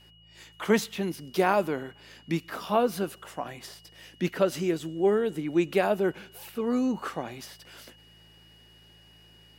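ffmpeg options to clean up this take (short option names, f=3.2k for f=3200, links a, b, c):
-af "bandreject=f=54.8:t=h:w=4,bandreject=f=109.6:t=h:w=4,bandreject=f=164.4:t=h:w=4,bandreject=f=2.9k:w=30"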